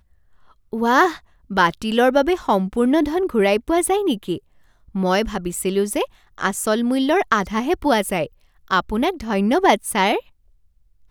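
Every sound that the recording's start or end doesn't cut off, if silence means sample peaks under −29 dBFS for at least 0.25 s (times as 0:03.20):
0:00.73–0:01.16
0:01.51–0:04.38
0:04.95–0:06.05
0:06.38–0:08.26
0:08.71–0:10.20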